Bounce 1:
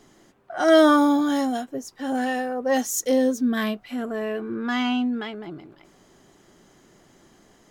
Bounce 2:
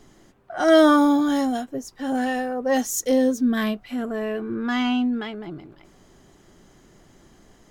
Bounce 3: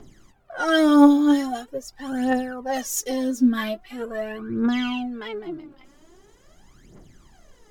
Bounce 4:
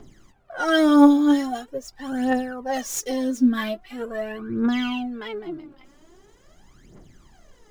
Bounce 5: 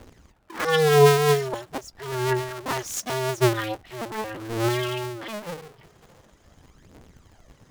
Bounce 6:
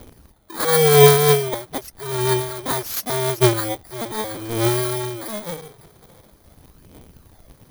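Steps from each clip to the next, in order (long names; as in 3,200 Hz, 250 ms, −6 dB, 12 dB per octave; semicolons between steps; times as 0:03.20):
low-shelf EQ 99 Hz +12 dB
phase shifter 0.43 Hz, delay 3.9 ms, feedback 73%; level −4 dB
running median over 3 samples
sub-harmonics by changed cycles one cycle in 2, inverted; level −2 dB
samples in bit-reversed order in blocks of 16 samples; level +4.5 dB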